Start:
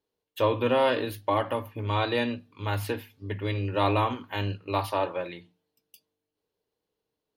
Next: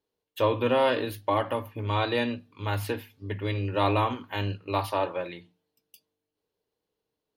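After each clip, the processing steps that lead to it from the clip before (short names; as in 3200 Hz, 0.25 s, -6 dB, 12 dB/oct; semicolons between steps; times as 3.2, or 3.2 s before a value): nothing audible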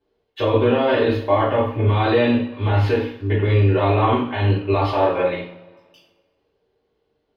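limiter -22 dBFS, peak gain reduction 10.5 dB; air absorption 240 m; two-slope reverb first 0.48 s, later 1.7 s, from -21 dB, DRR -8.5 dB; gain +5.5 dB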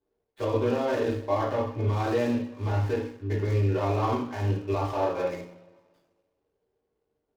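median filter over 15 samples; gain -8.5 dB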